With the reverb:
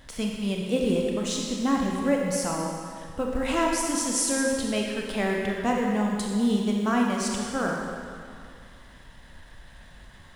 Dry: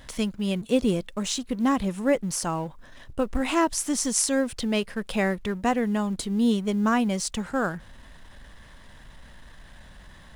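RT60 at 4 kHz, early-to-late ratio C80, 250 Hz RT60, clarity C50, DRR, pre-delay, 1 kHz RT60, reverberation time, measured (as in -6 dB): 1.9 s, 1.5 dB, 2.2 s, 0.5 dB, -1.0 dB, 25 ms, 2.3 s, 2.3 s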